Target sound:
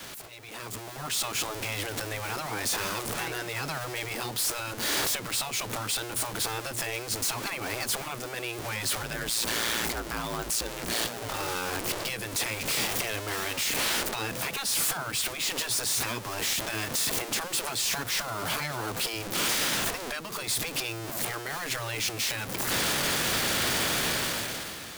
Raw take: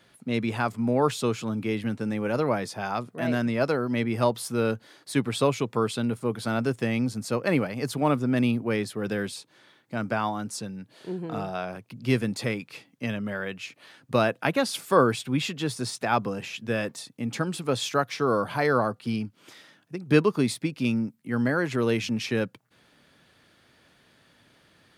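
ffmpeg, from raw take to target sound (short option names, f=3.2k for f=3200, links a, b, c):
-filter_complex "[0:a]aeval=exprs='val(0)+0.5*0.0299*sgn(val(0))':c=same,acompressor=threshold=-32dB:ratio=5,highshelf=f=4.1k:g=8,asettb=1/sr,asplit=3[a][b][c];[a]atrim=end=9.024[d];[b]atrim=start=9.02:end=11.29,asetpts=PTS-STARTPTS,afade=t=in:d=0.004:c=qsin,afade=t=out:st=2.266:d=0.004:c=qsin,aeval=exprs='val(0)*sin(2*PI*57*n/s)':c=same[e];[c]atrim=start=11.286[f];[d][e]acrossfade=d=0.004:c1=hsin:c2=qsin[g];[g][f]acrossfade=d=0.004:c1=qsin:c2=hsin,adynamicequalizer=threshold=0.00355:dfrequency=100:dqfactor=0.85:tfrequency=100:tqfactor=0.85:attack=5:release=100:ratio=0.375:range=2.5:mode=cutabove:tftype=bell,afftfilt=real='re*lt(hypot(re,im),0.0562)':imag='im*lt(hypot(re,im),0.0562)':win_size=1024:overlap=0.75,asoftclip=type=hard:threshold=-34dB,dynaudnorm=f=140:g=11:m=15dB,volume=-6dB"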